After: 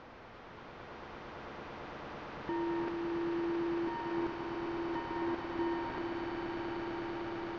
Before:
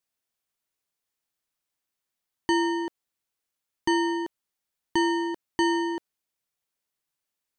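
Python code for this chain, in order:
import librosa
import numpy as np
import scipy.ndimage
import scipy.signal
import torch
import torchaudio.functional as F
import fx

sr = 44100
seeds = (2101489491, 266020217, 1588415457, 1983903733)

y = fx.delta_mod(x, sr, bps=32000, step_db=-23.5)
y = scipy.signal.sosfilt(scipy.signal.butter(2, 1200.0, 'lowpass', fs=sr, output='sos'), y)
y = fx.level_steps(y, sr, step_db=17)
y = fx.echo_swell(y, sr, ms=112, loudest=8, wet_db=-5.0)
y = y * 10.0 ** (-1.5 / 20.0)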